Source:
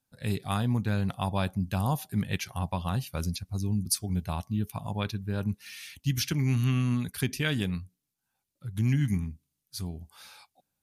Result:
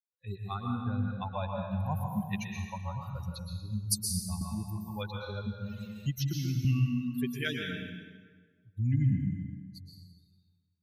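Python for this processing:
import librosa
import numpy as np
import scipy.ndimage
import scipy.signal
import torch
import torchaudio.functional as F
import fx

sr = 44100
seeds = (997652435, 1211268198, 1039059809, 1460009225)

y = fx.bin_expand(x, sr, power=3.0)
y = fx.rev_plate(y, sr, seeds[0], rt60_s=1.5, hf_ratio=0.75, predelay_ms=105, drr_db=0.5)
y = fx.band_squash(y, sr, depth_pct=70, at=(4.41, 6.65))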